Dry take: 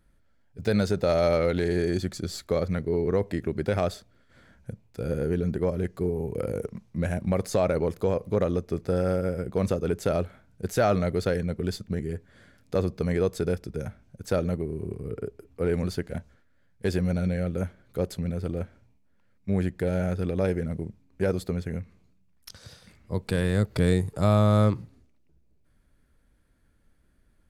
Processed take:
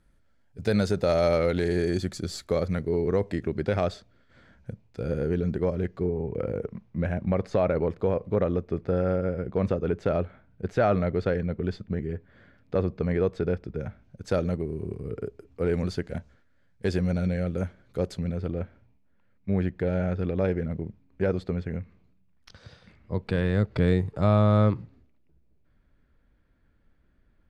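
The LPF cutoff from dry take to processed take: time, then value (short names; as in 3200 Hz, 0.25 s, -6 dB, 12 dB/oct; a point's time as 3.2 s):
2.85 s 11000 Hz
3.68 s 5400 Hz
5.66 s 5400 Hz
6.23 s 2700 Hz
13.77 s 2700 Hz
14.36 s 6900 Hz
18.14 s 6900 Hz
18.54 s 3300 Hz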